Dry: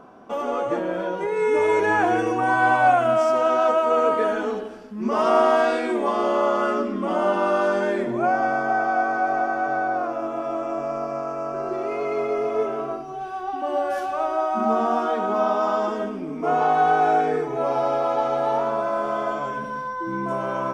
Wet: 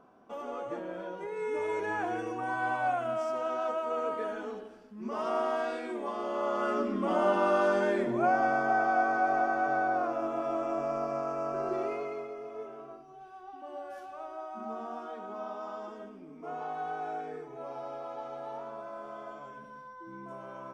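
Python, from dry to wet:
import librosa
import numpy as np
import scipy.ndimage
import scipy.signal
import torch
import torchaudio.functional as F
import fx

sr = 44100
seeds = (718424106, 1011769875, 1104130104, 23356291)

y = fx.gain(x, sr, db=fx.line((6.27, -13.0), (6.91, -5.0), (11.82, -5.0), (12.35, -18.0)))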